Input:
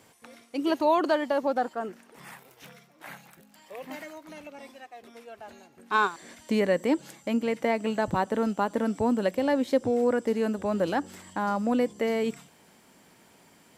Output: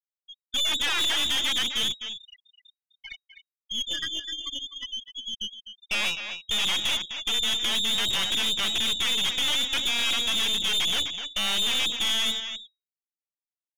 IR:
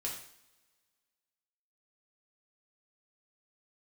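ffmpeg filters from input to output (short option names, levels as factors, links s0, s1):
-filter_complex "[0:a]aeval=exprs='0.0708*(abs(mod(val(0)/0.0708+3,4)-2)-1)':c=same,asplit=2[s0][s1];[1:a]atrim=start_sample=2205,lowpass=2200[s2];[s1][s2]afir=irnorm=-1:irlink=0,volume=0.251[s3];[s0][s3]amix=inputs=2:normalize=0,afftfilt=real='re*gte(hypot(re,im),0.0355)':imag='im*gte(hypot(re,im),0.0355)':win_size=1024:overlap=0.75,aeval=exprs='0.106*(cos(1*acos(clip(val(0)/0.106,-1,1)))-cos(1*PI/2))+0.00473*(cos(3*acos(clip(val(0)/0.106,-1,1)))-cos(3*PI/2))+0.0422*(cos(5*acos(clip(val(0)/0.106,-1,1)))-cos(5*PI/2))':c=same,lowpass=f=3200:t=q:w=0.5098,lowpass=f=3200:t=q:w=0.6013,lowpass=f=3200:t=q:w=0.9,lowpass=f=3200:t=q:w=2.563,afreqshift=-3800,highpass=400,aecho=1:1:254:0.316,aeval=exprs='(tanh(20*val(0)+0.65)-tanh(0.65))/20':c=same,volume=1.68"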